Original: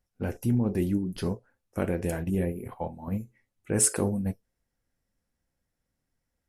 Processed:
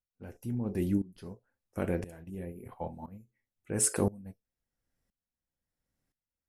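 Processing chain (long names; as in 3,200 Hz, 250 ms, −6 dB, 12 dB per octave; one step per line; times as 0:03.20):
tremolo with a ramp in dB swelling 0.98 Hz, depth 20 dB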